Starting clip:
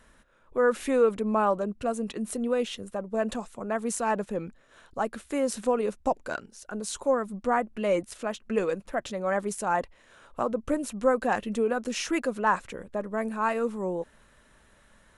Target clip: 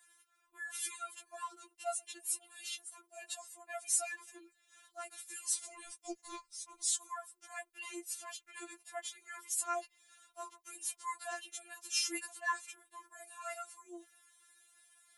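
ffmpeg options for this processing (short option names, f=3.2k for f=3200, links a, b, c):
-filter_complex "[0:a]aderivative,asettb=1/sr,asplit=3[a][b][c];[a]atrim=end=5.534[d];[b]atrim=start=5.53:end=6.89,asetpts=PTS-STARTPTS,afade=t=in:d=0.004:c=qsin,afade=t=out:st=1.356:d=0.004:c=qsin,afreqshift=-340[e];[c]atrim=start=6.886[f];[d][e]acrossfade=d=0.004:c1=hsin:c2=qsin[g];[g][f]acrossfade=d=0.004:c1=qsin:c2=hsin,afftfilt=real='re*4*eq(mod(b,16),0)':imag='im*4*eq(mod(b,16),0)':win_size=2048:overlap=0.75,volume=5dB"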